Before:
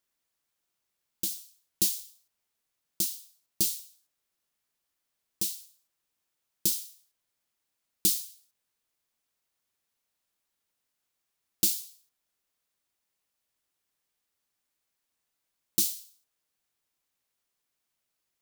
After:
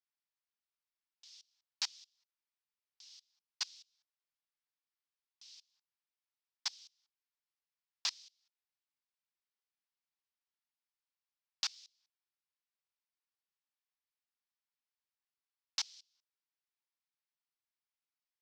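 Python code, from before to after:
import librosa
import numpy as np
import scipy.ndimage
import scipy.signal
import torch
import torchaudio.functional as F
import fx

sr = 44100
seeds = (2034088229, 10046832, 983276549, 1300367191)

y = fx.level_steps(x, sr, step_db=24)
y = fx.cheby_harmonics(y, sr, harmonics=(6,), levels_db=(-19,), full_scale_db=-10.0)
y = scipy.signal.sosfilt(scipy.signal.ellip(3, 1.0, 40, [840.0, 5400.0], 'bandpass', fs=sr, output='sos'), y)
y = F.gain(torch.from_numpy(y), 1.0).numpy()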